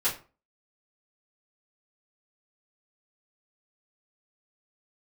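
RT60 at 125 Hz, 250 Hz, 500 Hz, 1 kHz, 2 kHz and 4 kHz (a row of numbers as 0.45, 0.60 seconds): 0.40, 0.40, 0.35, 0.35, 0.30, 0.25 seconds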